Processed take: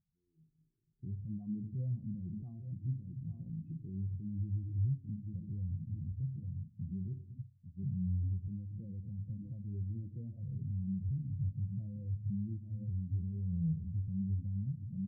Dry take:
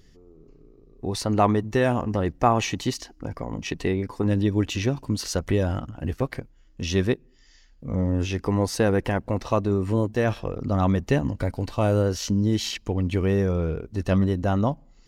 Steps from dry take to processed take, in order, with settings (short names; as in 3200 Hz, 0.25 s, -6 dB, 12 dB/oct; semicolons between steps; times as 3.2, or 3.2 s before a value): band-pass 130 Hz, Q 1.2; echo 0.843 s -14.5 dB; shoebox room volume 950 m³, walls furnished, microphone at 0.79 m; compressor, threshold -36 dBFS, peak gain reduction 16.5 dB; limiter -36.5 dBFS, peak gain reduction 10.5 dB; spectral expander 2.5:1; gain +11 dB